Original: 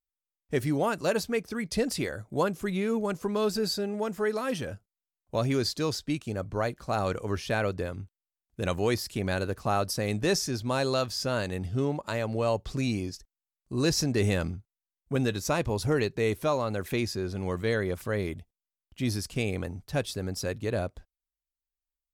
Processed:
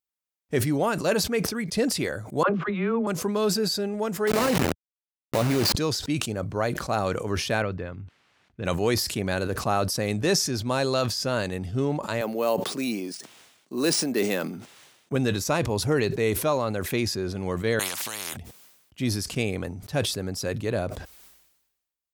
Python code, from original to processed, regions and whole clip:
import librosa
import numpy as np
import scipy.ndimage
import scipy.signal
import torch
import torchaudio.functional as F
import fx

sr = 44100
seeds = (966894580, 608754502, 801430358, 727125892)

y = fx.chain(x, sr, fx.lowpass(hz=3100.0, slope=24),
    fx.peak_eq(hz=1200.0, db=8.5, octaves=0.69),
    fx.dispersion(late='lows', ms=69.0, hz=410.0), at=(2.43, 3.07))
y = fx.chain(y, sr, fx.delta_hold(step_db=-28.0),
    fx.notch(hz=3300.0, q=17.0),
    fx.env_flatten(amount_pct=100), at=(4.27, 5.75))
y = fx.chain(y, sr, fx.lowpass(hz=2500.0, slope=12),
    fx.peak_eq(hz=490.0, db=-5.5, octaves=2.6), at=(7.62, 8.65))
y = fx.chain(y, sr, fx.highpass(hz=210.0, slope=24),
    fx.resample_bad(factor=3, down='none', up='hold'), at=(12.21, 15.12))
y = fx.chain(y, sr, fx.highpass(hz=430.0, slope=12),
    fx.spectral_comp(ratio=10.0), at=(17.79, 18.37))
y = scipy.signal.sosfilt(scipy.signal.butter(2, 90.0, 'highpass', fs=sr, output='sos'), y)
y = fx.sustainer(y, sr, db_per_s=57.0)
y = y * 10.0 ** (2.5 / 20.0)